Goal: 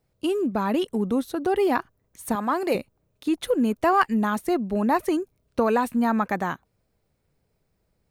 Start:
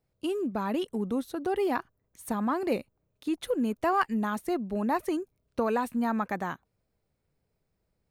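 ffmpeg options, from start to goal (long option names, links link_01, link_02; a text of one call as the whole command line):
ffmpeg -i in.wav -filter_complex "[0:a]asettb=1/sr,asplit=3[link_01][link_02][link_03];[link_01]atrim=end=2.354[link_04];[link_02]atrim=start=2.35:end=2.75,asetpts=PTS-STARTPTS,afade=type=in:duration=0.004:curve=qsin,afade=type=out:start_time=0.396:duration=0.004:curve=qsin,bass=frequency=250:gain=-12,treble=frequency=4000:gain=3[link_05];[link_03]atrim=start=2.746[link_06];[link_04][link_05]acrossfade=duration=0.004:curve1=hsin:curve2=qsin[link_07];[link_07][link_06]acrossfade=duration=0.004:curve1=qsin:curve2=hsin,volume=6dB" out.wav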